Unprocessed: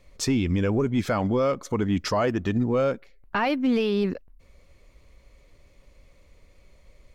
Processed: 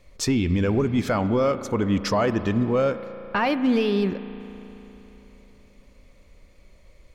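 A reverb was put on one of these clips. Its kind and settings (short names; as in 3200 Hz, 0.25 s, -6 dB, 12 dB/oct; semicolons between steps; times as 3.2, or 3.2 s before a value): spring tank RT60 3.6 s, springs 35 ms, chirp 35 ms, DRR 11.5 dB; gain +1.5 dB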